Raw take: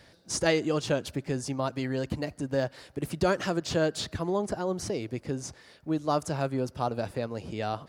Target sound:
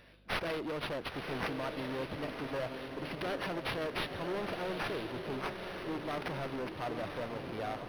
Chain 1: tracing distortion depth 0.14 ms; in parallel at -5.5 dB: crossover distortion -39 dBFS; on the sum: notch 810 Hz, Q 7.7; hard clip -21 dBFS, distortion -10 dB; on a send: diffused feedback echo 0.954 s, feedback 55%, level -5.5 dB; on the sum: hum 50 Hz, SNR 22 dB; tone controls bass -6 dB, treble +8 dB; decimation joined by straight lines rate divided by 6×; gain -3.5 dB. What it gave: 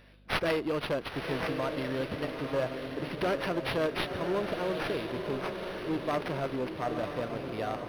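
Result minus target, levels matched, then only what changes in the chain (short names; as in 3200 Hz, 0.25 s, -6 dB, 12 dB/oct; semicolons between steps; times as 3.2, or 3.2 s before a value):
hard clip: distortion -7 dB
change: hard clip -30.5 dBFS, distortion -4 dB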